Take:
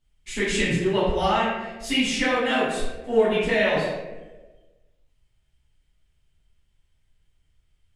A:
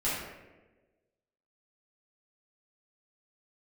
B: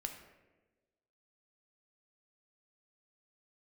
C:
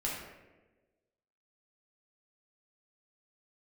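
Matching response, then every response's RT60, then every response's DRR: A; 1.2 s, 1.2 s, 1.2 s; -11.0 dB, 4.0 dB, -5.5 dB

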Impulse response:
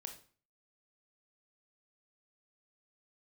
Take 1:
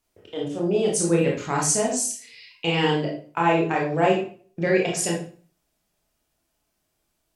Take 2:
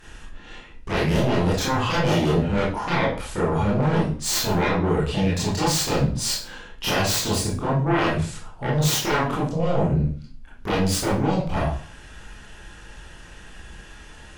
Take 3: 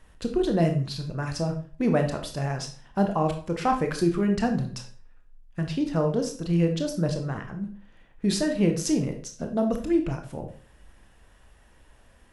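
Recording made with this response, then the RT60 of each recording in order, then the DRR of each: 3; 0.40 s, 0.40 s, 0.40 s; -2.5 dB, -7.0 dB, 4.5 dB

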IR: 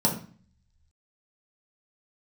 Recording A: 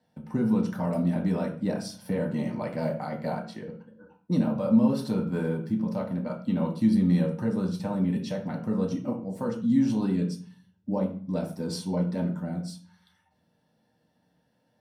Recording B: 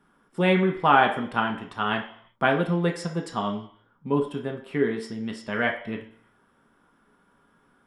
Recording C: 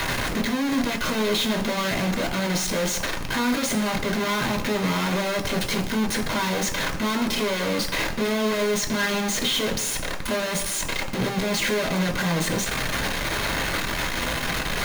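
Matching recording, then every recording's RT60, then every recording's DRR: A; 0.40 s, 0.60 s, 1.1 s; -2.5 dB, 1.5 dB, 2.5 dB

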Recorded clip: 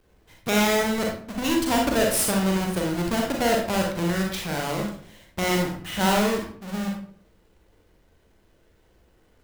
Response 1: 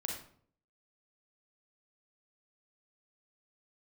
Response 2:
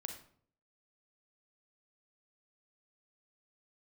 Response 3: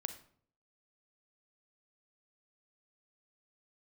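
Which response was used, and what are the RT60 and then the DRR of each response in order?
1; 0.55 s, 0.55 s, 0.55 s; 0.0 dB, 4.5 dB, 9.0 dB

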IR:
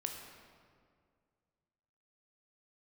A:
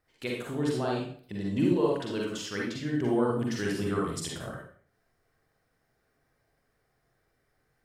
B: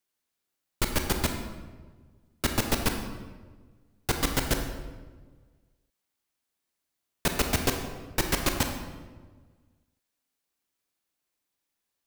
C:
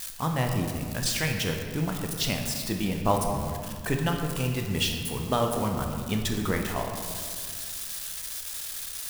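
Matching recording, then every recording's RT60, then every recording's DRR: C; 0.50 s, 1.4 s, 2.1 s; -3.0 dB, 4.0 dB, 2.5 dB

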